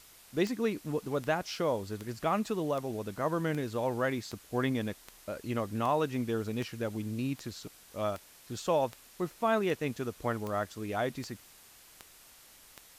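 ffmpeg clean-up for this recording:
-af "adeclick=t=4,afftdn=nr=21:nf=-57"

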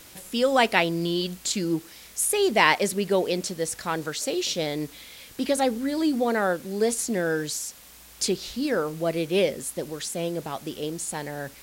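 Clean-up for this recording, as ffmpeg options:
-af "afftdn=nr=23:nf=-47"

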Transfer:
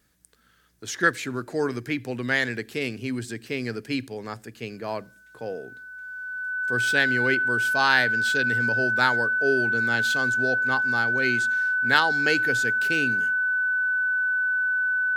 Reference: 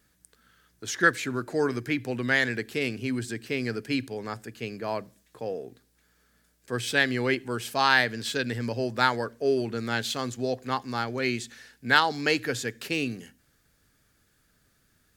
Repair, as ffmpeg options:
-af "bandreject=f=1.5k:w=30"

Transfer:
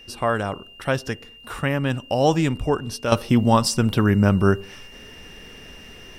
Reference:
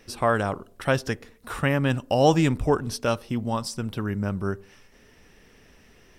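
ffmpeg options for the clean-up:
-af "bandreject=f=2.8k:w=30,agate=range=-21dB:threshold=-35dB,asetnsamples=n=441:p=0,asendcmd='3.12 volume volume -10.5dB',volume=0dB"

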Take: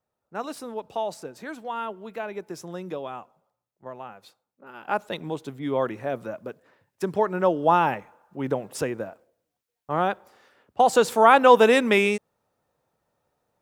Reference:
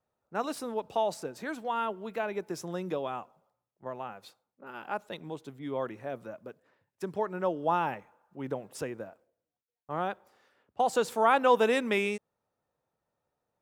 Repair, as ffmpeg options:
-af "asetnsamples=n=441:p=0,asendcmd='4.88 volume volume -8.5dB',volume=0dB"

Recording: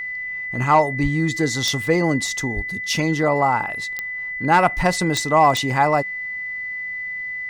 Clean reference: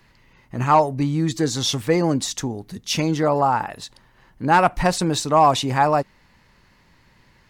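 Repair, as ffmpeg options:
-filter_complex "[0:a]adeclick=t=4,bandreject=f=2k:w=30,asplit=3[a][b][c];[a]afade=t=out:st=1.02:d=0.02[d];[b]highpass=f=140:w=0.5412,highpass=f=140:w=1.3066,afade=t=in:st=1.02:d=0.02,afade=t=out:st=1.14:d=0.02[e];[c]afade=t=in:st=1.14:d=0.02[f];[d][e][f]amix=inputs=3:normalize=0,asplit=3[g][h][i];[g]afade=t=out:st=2.55:d=0.02[j];[h]highpass=f=140:w=0.5412,highpass=f=140:w=1.3066,afade=t=in:st=2.55:d=0.02,afade=t=out:st=2.67:d=0.02[k];[i]afade=t=in:st=2.67:d=0.02[l];[j][k][l]amix=inputs=3:normalize=0"

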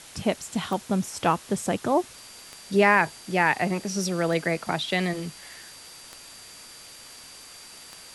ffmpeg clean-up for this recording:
-af "adeclick=t=4,bandreject=f=4.7k:w=30,afwtdn=0.0063"

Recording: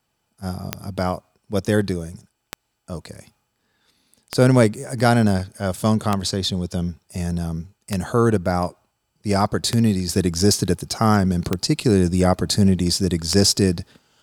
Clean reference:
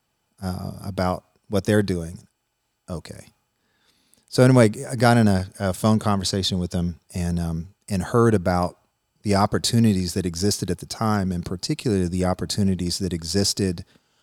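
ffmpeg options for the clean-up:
-af "adeclick=t=4,asetnsamples=n=441:p=0,asendcmd='10.09 volume volume -5dB',volume=0dB"

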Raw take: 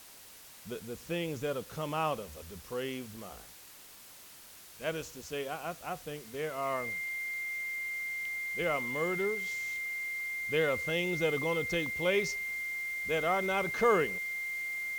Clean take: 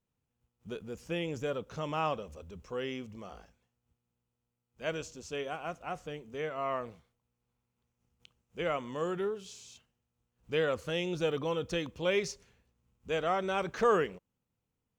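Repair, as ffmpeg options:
-af "bandreject=f=2.1k:w=30,afwtdn=0.0025"

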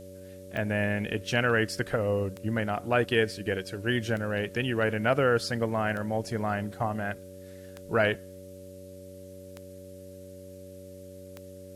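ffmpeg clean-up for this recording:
-af "adeclick=t=4,bandreject=f=92.9:t=h:w=4,bandreject=f=185.8:t=h:w=4,bandreject=f=278.7:t=h:w=4,bandreject=f=371.6:t=h:w=4,bandreject=f=464.5:t=h:w=4,bandreject=f=570:w=30,agate=range=-21dB:threshold=-38dB"

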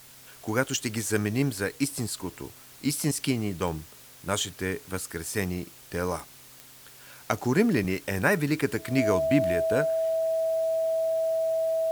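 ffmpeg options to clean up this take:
-af "adeclick=t=4,bandreject=f=129.8:t=h:w=4,bandreject=f=259.6:t=h:w=4,bandreject=f=389.4:t=h:w=4,bandreject=f=519.2:t=h:w=4,bandreject=f=649:t=h:w=4,bandreject=f=650:w=30,afwtdn=0.0032"

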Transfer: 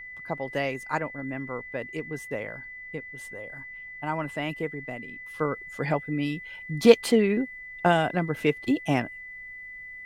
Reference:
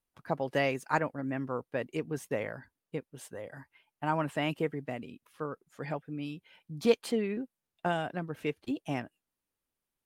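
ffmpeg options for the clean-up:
-af "bandreject=f=2k:w=30,agate=range=-21dB:threshold=-34dB,asetnsamples=n=441:p=0,asendcmd='5.27 volume volume -9.5dB',volume=0dB"

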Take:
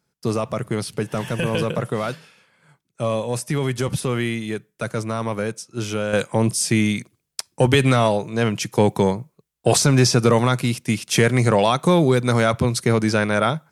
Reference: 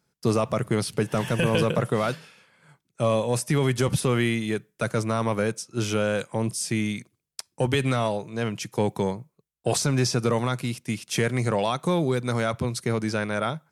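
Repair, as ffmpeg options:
-af "asetnsamples=n=441:p=0,asendcmd='6.13 volume volume -7.5dB',volume=0dB"

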